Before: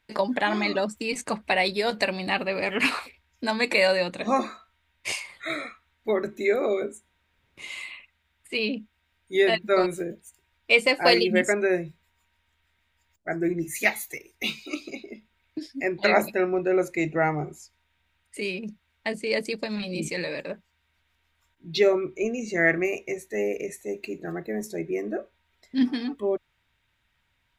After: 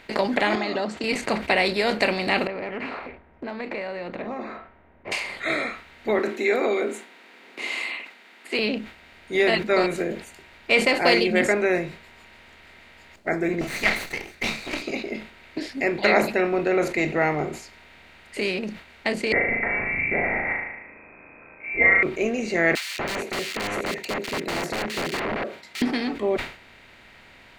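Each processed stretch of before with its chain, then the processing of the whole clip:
0.55–1.04 s: compression 2.5:1, threshold -31 dBFS + cabinet simulation 150–6600 Hz, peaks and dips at 750 Hz +6 dB, 2.3 kHz -9 dB, 5.8 kHz -4 dB
2.47–5.12 s: low-pass 1.4 kHz + level-controlled noise filter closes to 590 Hz, open at -22 dBFS + compression 3:1, threshold -43 dBFS
6.19–8.59 s: steep high-pass 240 Hz + band-stop 590 Hz, Q 7.2
13.61–14.82 s: comb filter that takes the minimum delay 0.49 ms + peaking EQ 400 Hz -7.5 dB 1.4 oct
19.32–22.03 s: flutter echo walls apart 6.4 m, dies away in 0.61 s + frequency inversion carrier 2.5 kHz
22.75–25.82 s: high-pass 130 Hz 24 dB/octave + integer overflow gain 28.5 dB + bands offset in time highs, lows 240 ms, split 2.3 kHz
whole clip: spectral levelling over time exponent 0.6; treble shelf 9.1 kHz -10 dB; decay stretcher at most 120 dB/s; trim -2 dB

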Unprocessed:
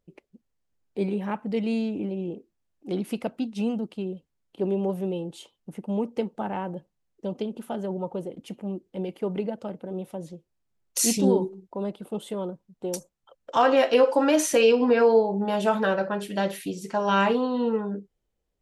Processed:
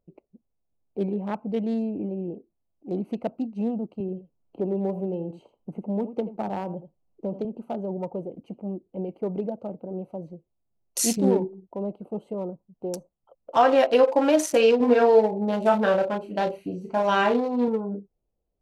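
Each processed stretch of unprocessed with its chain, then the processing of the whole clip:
4.00–7.45 s: delay 81 ms -13 dB + three bands compressed up and down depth 40%
14.77–17.68 s: doubling 33 ms -4.5 dB + feedback echo behind a high-pass 139 ms, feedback 64%, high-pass 3.7 kHz, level -19 dB
whole clip: local Wiener filter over 25 samples; peaking EQ 680 Hz +4.5 dB 0.44 oct

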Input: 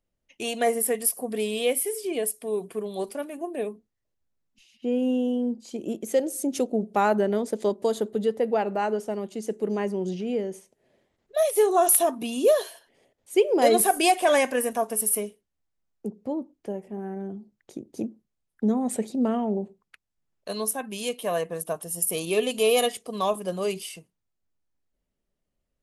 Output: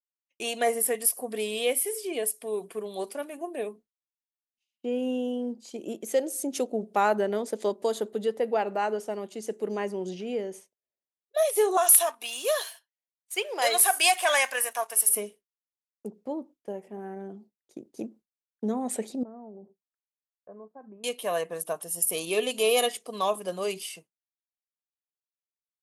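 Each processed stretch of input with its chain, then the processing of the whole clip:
11.77–15.09 s: high-pass 980 Hz + waveshaping leveller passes 1
19.23–21.04 s: bass shelf 230 Hz +3 dB + compression, threshold -37 dBFS + Gaussian low-pass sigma 7.7 samples
whole clip: bass shelf 74 Hz -8 dB; expander -42 dBFS; bass shelf 250 Hz -10.5 dB

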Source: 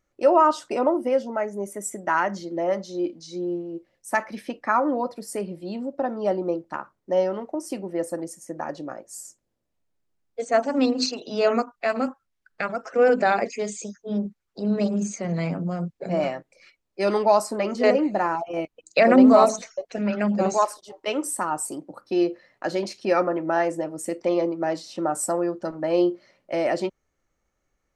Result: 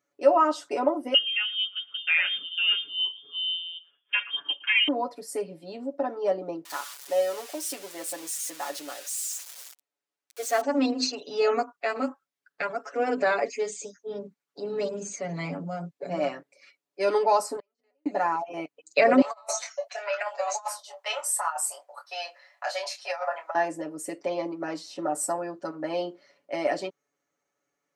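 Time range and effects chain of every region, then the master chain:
1.14–4.88 s: peaking EQ 180 Hz +13 dB 0.46 oct + delay 113 ms -22 dB + frequency inversion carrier 3.4 kHz
6.65–10.61 s: zero-crossing glitches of -24 dBFS + frequency weighting A
17.56–18.06 s: bass shelf 400 Hz -10 dB + inverted gate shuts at -27 dBFS, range -39 dB + upward expansion, over -51 dBFS
19.21–23.55 s: steep high-pass 610 Hz 48 dB/octave + doubling 24 ms -6 dB + compressor with a negative ratio -27 dBFS, ratio -0.5
whole clip: high-pass 250 Hz 12 dB/octave; comb 7 ms, depth 99%; trim -5 dB

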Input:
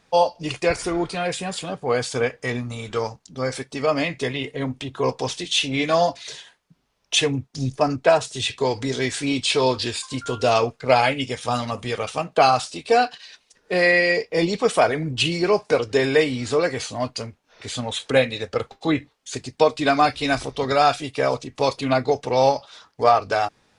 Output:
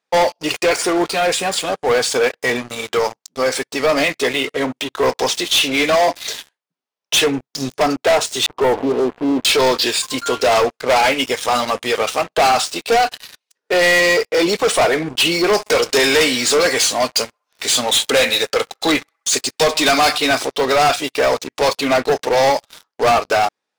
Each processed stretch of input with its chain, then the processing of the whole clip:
8.46–9.45 s: jump at every zero crossing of -27 dBFS + steep low-pass 1.1 kHz 48 dB/octave
15.53–20.18 s: treble shelf 2.9 kHz +11 dB + band-passed feedback delay 65 ms, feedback 79%, band-pass 1.2 kHz, level -21.5 dB
whole clip: high-pass 350 Hz 12 dB/octave; waveshaping leveller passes 5; trim -7 dB

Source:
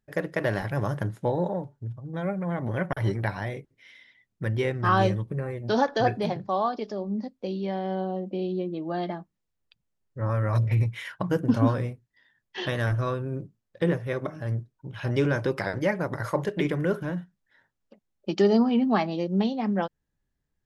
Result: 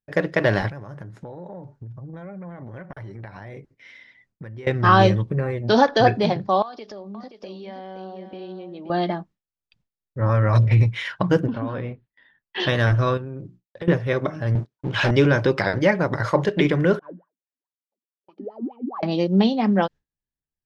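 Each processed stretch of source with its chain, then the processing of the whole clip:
0.69–4.67 s: compression 16:1, threshold -40 dBFS + peaking EQ 3.3 kHz -6 dB 0.56 oct
6.62–8.90 s: bass shelf 410 Hz -10.5 dB + compression 4:1, threshold -41 dBFS + delay 525 ms -9 dB
11.47–12.60 s: low-pass 3.7 kHz 24 dB/octave + compression 5:1, threshold -30 dBFS + peaking EQ 110 Hz -4.5 dB 0.8 oct
13.17–13.88 s: hum notches 60/120/180/240/300/360 Hz + expander -59 dBFS + compression, threshold -36 dBFS
14.55–15.11 s: high-pass 280 Hz 6 dB/octave + waveshaping leveller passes 3
16.99–19.03 s: thinning echo 99 ms, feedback 28%, high-pass 320 Hz, level -21 dB + compression 3:1, threshold -24 dBFS + wah-wah 4.7 Hz 230–1200 Hz, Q 16
whole clip: low-pass 5.5 kHz 12 dB/octave; dynamic bell 4.3 kHz, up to +4 dB, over -51 dBFS, Q 0.97; gate with hold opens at -55 dBFS; trim +7 dB

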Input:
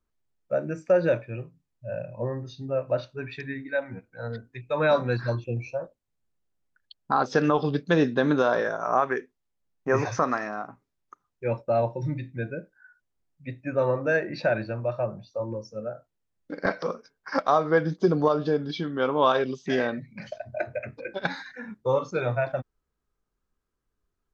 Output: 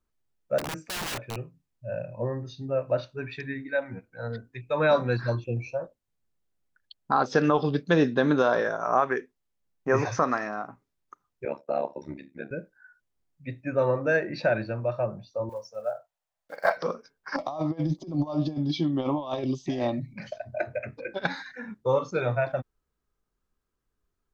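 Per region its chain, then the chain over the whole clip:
0.58–1.36 s: compression 4:1, threshold -22 dBFS + integer overflow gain 27.5 dB
11.45–12.51 s: Chebyshev high-pass 160 Hz, order 8 + AM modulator 70 Hz, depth 95%
15.49–16.77 s: block-companded coder 7-bit + resonant low shelf 460 Hz -13.5 dB, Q 3
17.36–20.14 s: bass shelf 390 Hz +4.5 dB + compressor with a negative ratio -24 dBFS, ratio -0.5 + static phaser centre 300 Hz, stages 8
whole clip: none

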